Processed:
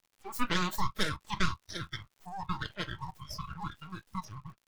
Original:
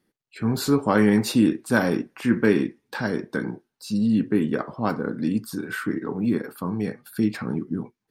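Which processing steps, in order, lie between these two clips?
high-pass 280 Hz 24 dB/octave; speed mistake 45 rpm record played at 78 rpm; band-stop 1.6 kHz, Q 5.3; full-wave rectifier; crackle 110 per s -34 dBFS; spectral noise reduction 14 dB; trim -4.5 dB

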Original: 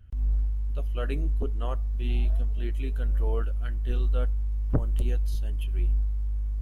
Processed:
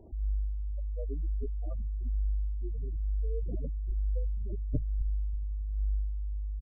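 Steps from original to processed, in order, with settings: wind noise 540 Hz -40 dBFS; speakerphone echo 160 ms, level -18 dB; spectral gate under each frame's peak -15 dB strong; trim -6 dB

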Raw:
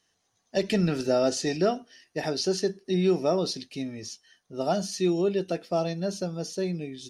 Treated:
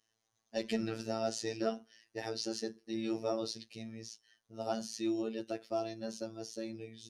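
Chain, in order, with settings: robot voice 112 Hz; trim -7 dB

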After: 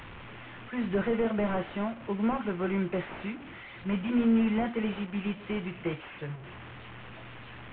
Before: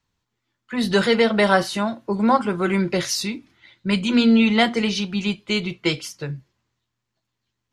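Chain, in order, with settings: one-bit delta coder 16 kbps, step -30 dBFS; trim -8.5 dB

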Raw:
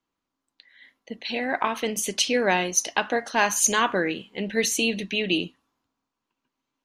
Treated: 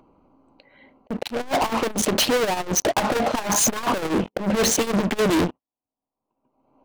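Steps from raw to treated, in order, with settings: local Wiener filter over 25 samples; low-pass 2.1 kHz 6 dB/octave; band-stop 690 Hz, Q 12; gate -44 dBFS, range -26 dB; peaking EQ 680 Hz +6 dB 0.72 oct, from 4.38 s +14 dB; peak limiter -16.5 dBFS, peak gain reduction 9 dB; waveshaping leveller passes 5; upward compressor, threshold -24 dBFS; slow attack 180 ms; hard clipper -24.5 dBFS, distortion -12 dB; transformer saturation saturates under 79 Hz; trim +7.5 dB

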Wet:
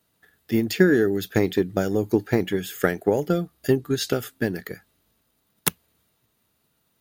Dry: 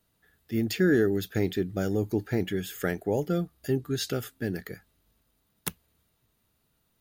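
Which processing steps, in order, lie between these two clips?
high-pass 140 Hz 6 dB/octave; transient shaper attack +7 dB, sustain +1 dB; trim +3.5 dB

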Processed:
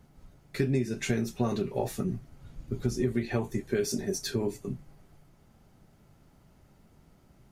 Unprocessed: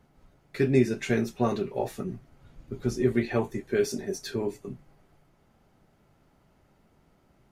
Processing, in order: tone controls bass +6 dB, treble +6 dB; compression 6:1, threshold -24 dBFS, peak gain reduction 11 dB

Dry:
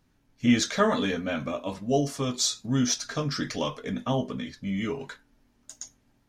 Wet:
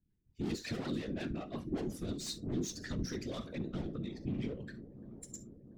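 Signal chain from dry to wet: expander on every frequency bin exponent 1.5; valve stage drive 35 dB, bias 0.3; graphic EQ 125/250/4000 Hz +8/+8/+4 dB; speed mistake 44.1 kHz file played as 48 kHz; bass shelf 170 Hz +4 dB; on a send at -13 dB: reverberation, pre-delay 33 ms; on the sum: whisper effect; compression 2:1, threshold -43 dBFS, peak gain reduction 11.5 dB; feedback echo behind a low-pass 344 ms, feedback 81%, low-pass 560 Hz, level -15 dB; rotary cabinet horn 5.5 Hz, later 1.2 Hz, at 2.66 s; trim +3 dB

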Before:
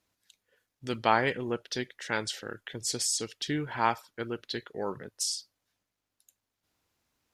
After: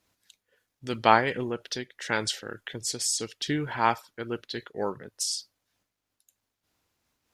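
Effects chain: random flutter of the level, depth 65%; trim +6 dB

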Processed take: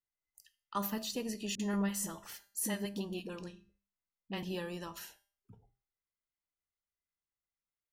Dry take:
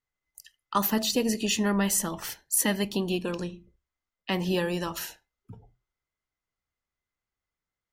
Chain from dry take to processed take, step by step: feedback comb 200 Hz, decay 0.44 s, harmonics all, mix 60%; 1.55–4.43 s: phase dispersion highs, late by 45 ms, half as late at 510 Hz; trim -5 dB

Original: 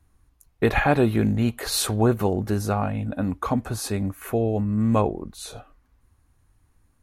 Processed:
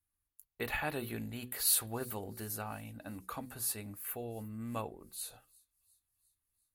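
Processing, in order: pre-emphasis filter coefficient 0.9; gate -59 dBFS, range -10 dB; peaking EQ 5.9 kHz -9.5 dB 0.91 oct; hum notches 60/120/180/240/300/360/420/480 Hz; feedback echo behind a high-pass 366 ms, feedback 59%, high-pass 4.6 kHz, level -23 dB; speed mistake 24 fps film run at 25 fps

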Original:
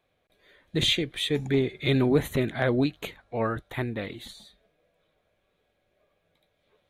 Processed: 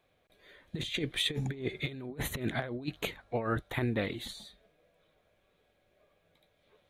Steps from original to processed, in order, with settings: compressor with a negative ratio -29 dBFS, ratio -0.5; trim -3.5 dB

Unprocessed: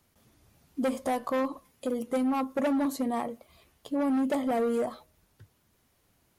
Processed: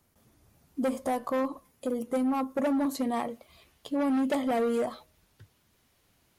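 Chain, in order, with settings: peaking EQ 3.3 kHz -3.5 dB 1.9 oct, from 2.95 s +4 dB

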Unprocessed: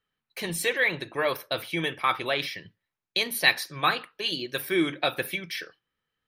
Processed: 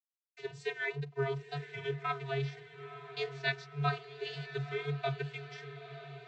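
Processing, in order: crossover distortion -43 dBFS; vocoder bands 32, square 140 Hz; wow and flutter 49 cents; on a send: echo that smears into a reverb 960 ms, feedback 55%, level -12 dB; on the sum: trim -7.5 dB

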